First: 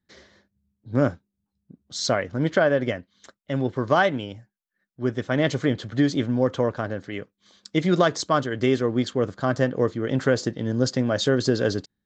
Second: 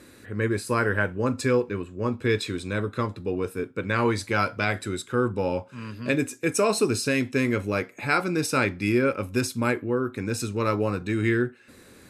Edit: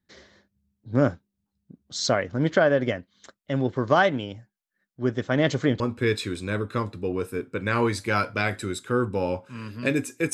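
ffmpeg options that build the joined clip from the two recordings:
-filter_complex "[0:a]apad=whole_dur=10.33,atrim=end=10.33,atrim=end=5.802[a];[1:a]atrim=start=2.028:end=6.56[b];[a][b]acrossfade=d=0.004:c1=hsin:c2=hsin"

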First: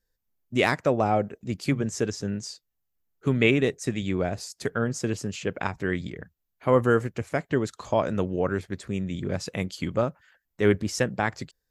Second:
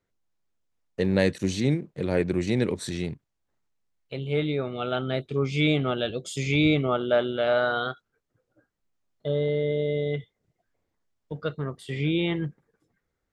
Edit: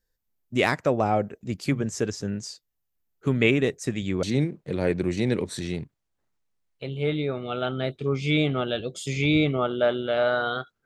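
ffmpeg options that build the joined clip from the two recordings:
-filter_complex "[0:a]apad=whole_dur=10.85,atrim=end=10.85,atrim=end=4.232[a];[1:a]atrim=start=1.528:end=8.15[b];[a][b]acrossfade=d=0.004:c1=hsin:c2=hsin"

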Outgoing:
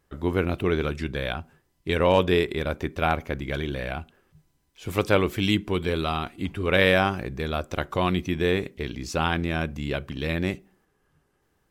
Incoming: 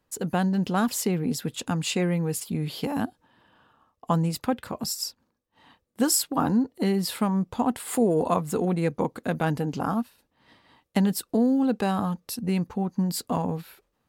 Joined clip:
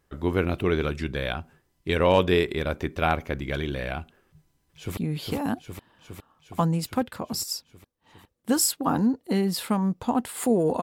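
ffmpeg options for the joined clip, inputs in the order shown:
-filter_complex "[0:a]apad=whole_dur=10.82,atrim=end=10.82,atrim=end=4.972[a];[1:a]atrim=start=2.478:end=8.33[b];[a][b]acrossfade=d=0.004:c1=hsin:c2=hsin,asplit=2[c][d];[d]afade=t=in:st=4.28:d=0.01,afade=t=out:st=4.97:d=0.01,aecho=0:1:410|820|1230|1640|2050|2460|2870|3280|3690|4100|4510|4920:0.630957|0.473218|0.354914|0.266185|0.199639|0.149729|0.112297|0.0842226|0.063167|0.0473752|0.0355314|0.0266486[e];[c][e]amix=inputs=2:normalize=0"

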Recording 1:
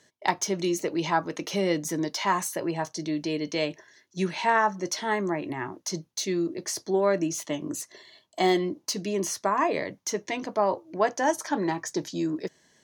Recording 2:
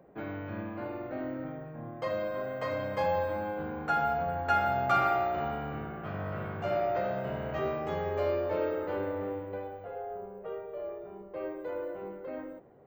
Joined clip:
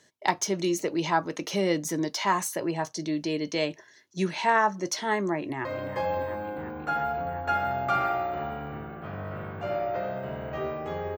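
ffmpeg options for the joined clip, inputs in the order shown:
-filter_complex "[0:a]apad=whole_dur=11.17,atrim=end=11.17,atrim=end=5.652[a];[1:a]atrim=start=2.658:end=8.18[b];[a][b]acrossfade=d=0.004:c1=hsin:c2=hsin,asplit=2[c][d];[d]afade=t=in:st=5.39:d=0.01,afade=t=out:st=5.65:d=0.01,aecho=0:1:350|700|1050|1400|1750|2100|2450|2800|3150|3500|3850|4200:0.281838|0.239563|0.203628|0.173084|0.147121|0.125053|0.106295|0.0903509|0.0767983|0.0652785|0.0554867|0.0471637[e];[c][e]amix=inputs=2:normalize=0"

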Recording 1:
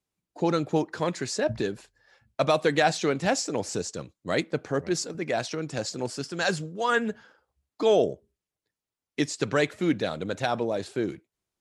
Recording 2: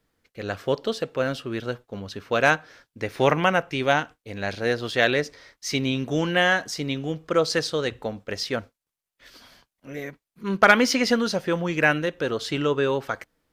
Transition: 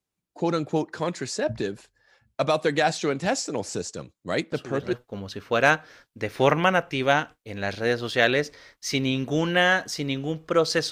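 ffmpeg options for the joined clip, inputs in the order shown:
-filter_complex "[1:a]asplit=2[a][b];[0:a]apad=whole_dur=10.91,atrim=end=10.91,atrim=end=4.932[c];[b]atrim=start=1.728:end=7.71[d];[a]atrim=start=1.32:end=1.73,asetpts=PTS-STARTPTS,volume=-7.5dB,afade=t=in:d=0.004:c=hsin,afade=t=out:st=0.406:d=0.004:c=hsin,adelay=4520[e];[c][d]acrossfade=d=0.004:c1=hsin:c2=hsin[f];[f][e]amix=inputs=2:normalize=0"

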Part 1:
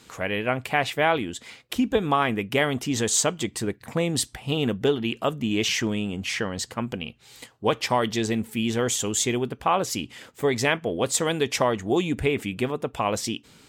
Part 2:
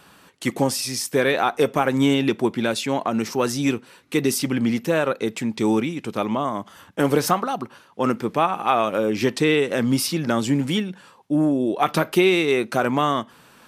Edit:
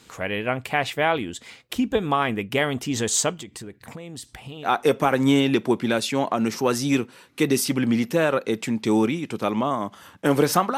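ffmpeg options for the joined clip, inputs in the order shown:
-filter_complex "[0:a]asettb=1/sr,asplit=3[a][b][c];[a]atrim=end=3.404[d];[b]atrim=start=3.4:end=4.7,asetpts=PTS-STARTPTS,afade=t=in:d=0.004:c=qsin,afade=t=out:st=1.296:d=0.004:c=qsin,acompressor=threshold=-34dB:ratio=6:attack=3.2:release=140:knee=1:detection=peak[e];[c]atrim=start=4.696[f];[d][e]acrossfade=d=0.004:c1=hsin:c2=qsin[g];[g][f]acrossfade=d=0.004:c1=qsin:c2=hsin,apad=whole_dur=10.77,atrim=end=10.77,atrim=end=4.7,asetpts=PTS-STARTPTS[h];[1:a]atrim=start=1.36:end=7.51,asetpts=PTS-STARTPTS[i];[h][i]acrossfade=d=0.08:c1=tri:c2=tri"

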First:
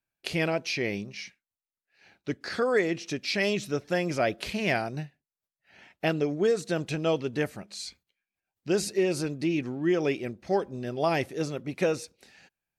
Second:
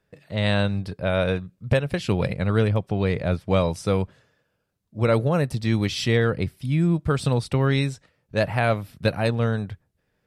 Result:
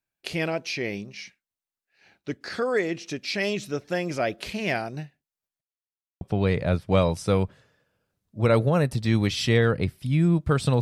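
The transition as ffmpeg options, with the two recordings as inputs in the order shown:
-filter_complex "[0:a]apad=whole_dur=10.81,atrim=end=10.81,asplit=2[a][b];[a]atrim=end=5.61,asetpts=PTS-STARTPTS,afade=t=out:st=5.606:d=0.004:c=hsin[c];[b]atrim=start=5.61:end=6.21,asetpts=PTS-STARTPTS,volume=0[d];[1:a]atrim=start=2.8:end=7.4,asetpts=PTS-STARTPTS,afade=t=in:d=0.004:c=hsin[e];[c][d][e]concat=n=3:v=0:a=1"

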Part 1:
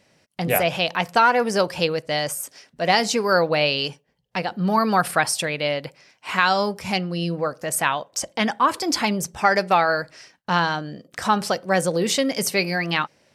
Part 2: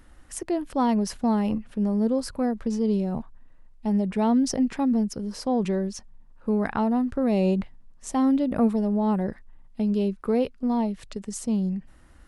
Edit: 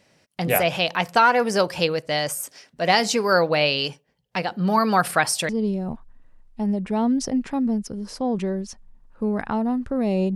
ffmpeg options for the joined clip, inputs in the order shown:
-filter_complex "[0:a]apad=whole_dur=10.35,atrim=end=10.35,atrim=end=5.492[a];[1:a]atrim=start=2.748:end=7.61[b];[a][b]acrossfade=d=0.004:c1=hsin:c2=hsin"

